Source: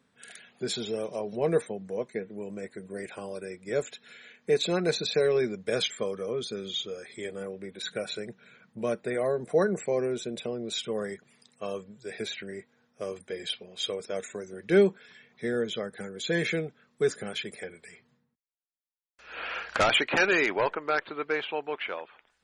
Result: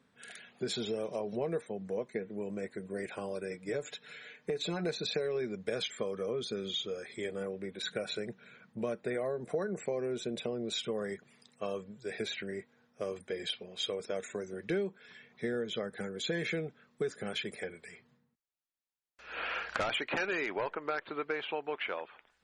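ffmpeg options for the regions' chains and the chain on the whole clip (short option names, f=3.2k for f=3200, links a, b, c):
-filter_complex "[0:a]asettb=1/sr,asplit=3[a][b][c];[a]atrim=end=3.504[d];[b]atrim=start=3.5:end=4.85,asetpts=PTS-STARTPTS,afade=t=in:d=0.004:c=qsin,afade=t=out:st=1.346:d=0.004:c=qsin,aecho=1:1:6.7:0.69,atrim=end_sample=59535,acompressor=threshold=-29dB:ratio=2.5:attack=3.2:release=140:knee=1:detection=peak[e];[c]atrim=start=4.846[f];[d][e]acrossfade=d=0.004:c1=hsin:c2=qsin[g];[g][f]acrossfade=d=0.004:c1=qsin:c2=hsin,highshelf=f=6.6k:g=-7,acompressor=threshold=-31dB:ratio=6"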